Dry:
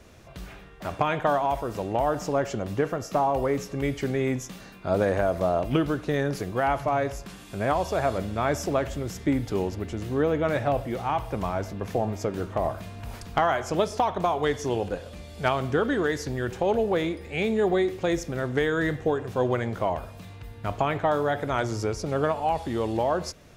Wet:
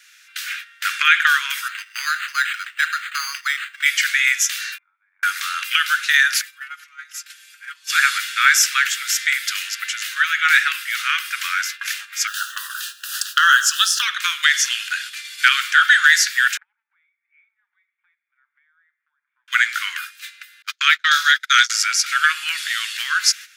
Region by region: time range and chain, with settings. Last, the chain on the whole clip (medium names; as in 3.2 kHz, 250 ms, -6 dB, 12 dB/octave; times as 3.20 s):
1.68–3.86 s: bass shelf 130 Hz +11 dB + decimation joined by straight lines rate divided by 8×
4.78–5.23 s: cascade formant filter u + level flattener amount 70%
6.41–7.90 s: compression 16:1, threshold -31 dBFS + inharmonic resonator 63 Hz, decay 0.21 s, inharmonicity 0.008
12.27–14.02 s: treble shelf 8.9 kHz +4.5 dB + word length cut 10-bit, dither none + Butterworth band-stop 2.2 kHz, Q 2.1
16.57–19.48 s: cascade formant filter u + three bands compressed up and down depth 100%
20.62–21.70 s: high-pass 450 Hz + high-order bell 4.8 kHz +9 dB 1.1 oct + gate -31 dBFS, range -37 dB
whole clip: steep high-pass 1.4 kHz 72 dB/octave; gate -52 dBFS, range -12 dB; loudness maximiser +23 dB; trim -1 dB